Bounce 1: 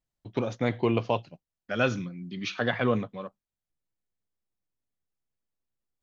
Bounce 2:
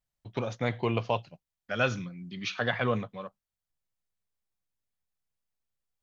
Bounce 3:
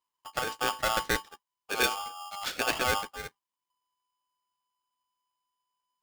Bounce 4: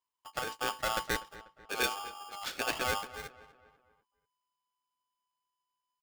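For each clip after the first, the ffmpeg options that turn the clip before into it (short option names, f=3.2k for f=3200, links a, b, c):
-af "equalizer=f=300:t=o:w=1.2:g=-7"
-af "aeval=exprs='val(0)*sgn(sin(2*PI*1000*n/s))':c=same"
-filter_complex "[0:a]asplit=2[a][b];[b]adelay=245,lowpass=f=2.9k:p=1,volume=-17dB,asplit=2[c][d];[d]adelay=245,lowpass=f=2.9k:p=1,volume=0.48,asplit=2[e][f];[f]adelay=245,lowpass=f=2.9k:p=1,volume=0.48,asplit=2[g][h];[h]adelay=245,lowpass=f=2.9k:p=1,volume=0.48[i];[a][c][e][g][i]amix=inputs=5:normalize=0,volume=-4.5dB"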